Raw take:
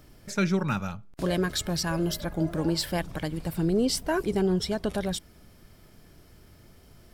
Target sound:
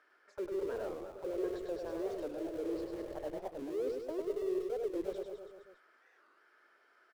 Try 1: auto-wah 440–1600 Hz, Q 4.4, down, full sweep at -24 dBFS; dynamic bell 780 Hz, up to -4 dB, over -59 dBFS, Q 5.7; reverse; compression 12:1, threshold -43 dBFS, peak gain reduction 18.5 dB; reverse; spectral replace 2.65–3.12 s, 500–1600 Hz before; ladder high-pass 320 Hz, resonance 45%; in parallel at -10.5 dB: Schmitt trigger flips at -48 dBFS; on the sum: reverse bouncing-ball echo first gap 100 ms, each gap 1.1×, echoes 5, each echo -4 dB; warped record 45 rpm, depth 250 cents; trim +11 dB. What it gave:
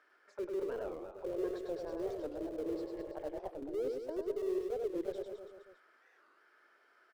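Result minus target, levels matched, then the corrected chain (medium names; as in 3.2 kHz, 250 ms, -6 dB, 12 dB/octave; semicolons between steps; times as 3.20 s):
Schmitt trigger: distortion +5 dB
auto-wah 440–1600 Hz, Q 4.4, down, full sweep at -24 dBFS; dynamic bell 780 Hz, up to -4 dB, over -59 dBFS, Q 5.7; reverse; compression 12:1, threshold -43 dBFS, peak gain reduction 18.5 dB; reverse; spectral replace 2.65–3.12 s, 500–1600 Hz before; ladder high-pass 320 Hz, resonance 45%; in parallel at -10.5 dB: Schmitt trigger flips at -56.5 dBFS; on the sum: reverse bouncing-ball echo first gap 100 ms, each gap 1.1×, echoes 5, each echo -4 dB; warped record 45 rpm, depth 250 cents; trim +11 dB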